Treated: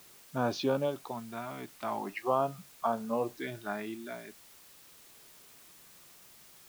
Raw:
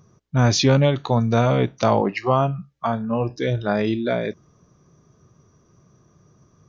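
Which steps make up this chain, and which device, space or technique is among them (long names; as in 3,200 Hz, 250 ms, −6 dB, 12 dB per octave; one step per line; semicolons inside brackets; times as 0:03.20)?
shortwave radio (band-pass filter 300–2,700 Hz; amplitude tremolo 0.34 Hz, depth 69%; auto-filter notch square 0.45 Hz 500–2,000 Hz; white noise bed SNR 20 dB)
level −5.5 dB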